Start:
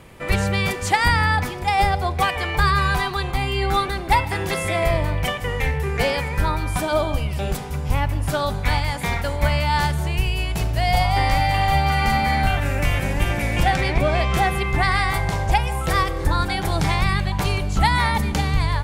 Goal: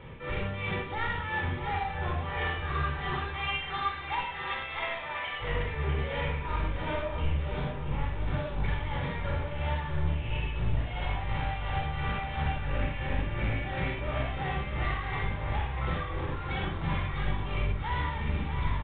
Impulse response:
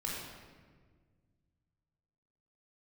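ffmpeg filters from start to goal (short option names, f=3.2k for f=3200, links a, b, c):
-filter_complex "[0:a]asettb=1/sr,asplit=3[a][b][c];[a]atrim=end=3.234[d];[b]atrim=start=3.23:end=5.4,asetpts=PTS-STARTPTS,afade=t=in:d=0.004:c=qsin,afade=t=out:st=2.166:d=0.004:c=qsin,highpass=1k[e];[c]atrim=start=5.396[f];[d][e]acrossfade=d=0.004:c1=hsin:c2=qsin[g];[g][f]acrossfade=d=0.004:c1=qsin:c2=hsin,acompressor=threshold=-22dB:ratio=6,asoftclip=type=tanh:threshold=-29.5dB,tremolo=f=2.9:d=0.64,aecho=1:1:645|1290|1935|2580|3225|3870:0.335|0.178|0.0941|0.0499|0.0264|0.014[h];[1:a]atrim=start_sample=2205,afade=t=out:st=0.18:d=0.01,atrim=end_sample=8379[i];[h][i]afir=irnorm=-1:irlink=0,aresample=8000,aresample=44100"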